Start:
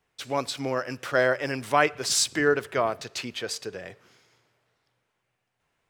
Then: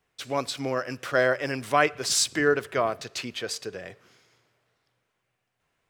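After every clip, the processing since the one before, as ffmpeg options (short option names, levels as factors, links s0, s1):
-af "bandreject=f=880:w=16"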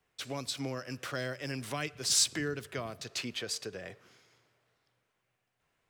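-filter_complex "[0:a]acrossover=split=240|3000[s0][s1][s2];[s1]acompressor=threshold=0.0158:ratio=6[s3];[s0][s3][s2]amix=inputs=3:normalize=0,volume=0.75"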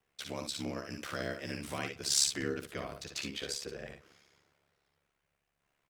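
-af "aecho=1:1:55|66:0.422|0.398,aeval=exprs='val(0)*sin(2*PI*35*n/s)':c=same"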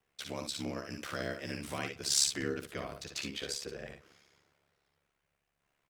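-af anull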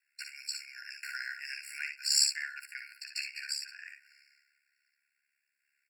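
-af "afftfilt=real='re*eq(mod(floor(b*sr/1024/1400),2),1)':imag='im*eq(mod(floor(b*sr/1024/1400),2),1)':win_size=1024:overlap=0.75,volume=1.68"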